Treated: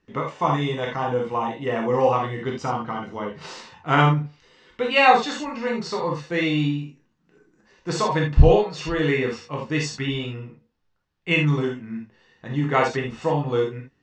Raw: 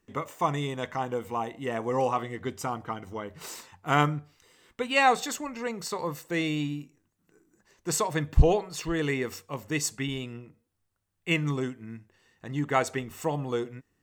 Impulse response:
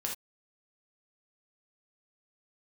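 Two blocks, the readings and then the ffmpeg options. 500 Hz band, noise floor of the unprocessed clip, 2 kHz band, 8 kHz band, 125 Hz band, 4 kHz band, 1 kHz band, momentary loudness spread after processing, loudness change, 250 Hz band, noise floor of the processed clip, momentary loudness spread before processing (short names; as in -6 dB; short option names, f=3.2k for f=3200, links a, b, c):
+7.5 dB, -76 dBFS, +6.0 dB, -5.0 dB, +7.5 dB, +6.0 dB, +6.5 dB, 16 LU, +6.5 dB, +6.0 dB, -69 dBFS, 16 LU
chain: -filter_complex "[0:a]lowpass=f=5.2k:w=0.5412,lowpass=f=5.2k:w=1.3066[a];[1:a]atrim=start_sample=2205[b];[a][b]afir=irnorm=-1:irlink=0,volume=4dB"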